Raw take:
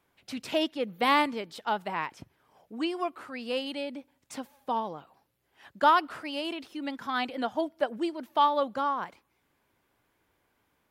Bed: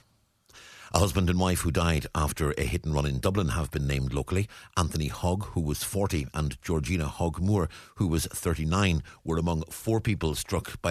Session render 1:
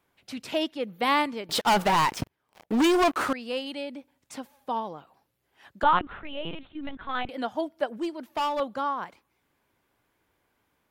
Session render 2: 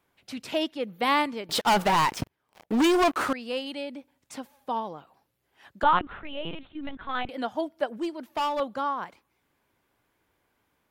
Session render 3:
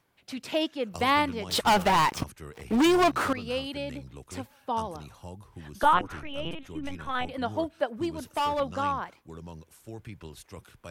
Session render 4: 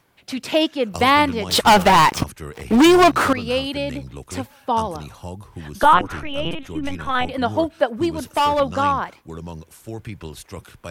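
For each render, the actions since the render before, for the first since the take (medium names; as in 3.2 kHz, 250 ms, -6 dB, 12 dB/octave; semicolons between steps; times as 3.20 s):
1.49–3.33 s: waveshaping leveller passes 5; 5.83–7.29 s: LPC vocoder at 8 kHz pitch kept; 7.85–8.60 s: hard clipper -24 dBFS
no audible change
add bed -16 dB
trim +9.5 dB; peak limiter -3 dBFS, peak gain reduction 2.5 dB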